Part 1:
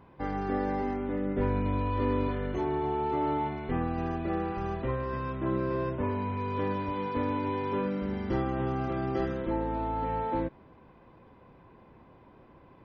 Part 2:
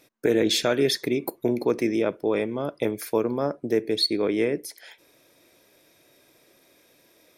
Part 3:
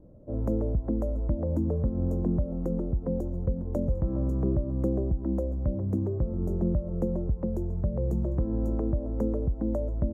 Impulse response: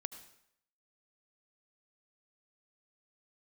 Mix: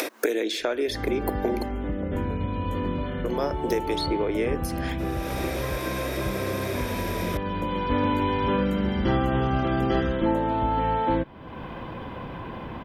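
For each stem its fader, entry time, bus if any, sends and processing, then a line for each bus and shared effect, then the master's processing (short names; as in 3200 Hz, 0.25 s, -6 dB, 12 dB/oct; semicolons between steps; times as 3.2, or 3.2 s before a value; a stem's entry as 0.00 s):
-1.5 dB, 0.75 s, no send, thirty-one-band EQ 400 Hz -4 dB, 1600 Hz +3 dB, 3150 Hz +9 dB; AGC gain up to 8.5 dB; auto duck -9 dB, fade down 1.75 s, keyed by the second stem
-2.0 dB, 0.00 s, muted 1.63–3.24, no send, HPF 290 Hz 24 dB/oct; three-band squash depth 100%
-6.5 dB, 0.60 s, no send, bell 13000 Hz +13 dB 2.1 oct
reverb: off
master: upward compressor, threshold -23 dBFS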